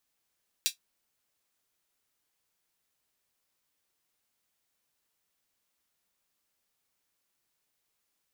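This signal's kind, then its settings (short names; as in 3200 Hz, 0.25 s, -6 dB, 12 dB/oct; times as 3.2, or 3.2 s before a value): closed hi-hat, high-pass 3400 Hz, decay 0.12 s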